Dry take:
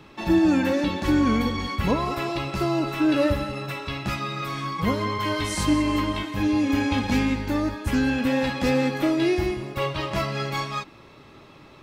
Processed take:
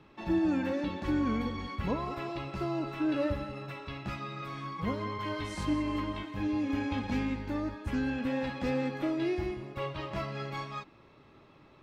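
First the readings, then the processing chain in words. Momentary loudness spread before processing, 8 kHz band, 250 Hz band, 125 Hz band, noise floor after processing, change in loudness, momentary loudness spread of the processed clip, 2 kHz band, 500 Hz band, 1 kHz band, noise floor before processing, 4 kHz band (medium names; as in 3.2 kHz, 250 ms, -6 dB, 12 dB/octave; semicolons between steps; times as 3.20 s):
8 LU, -17.5 dB, -9.0 dB, -9.0 dB, -58 dBFS, -9.5 dB, 9 LU, -11.0 dB, -9.0 dB, -9.5 dB, -49 dBFS, -13.0 dB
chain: low-pass 2.8 kHz 6 dB/octave; trim -9 dB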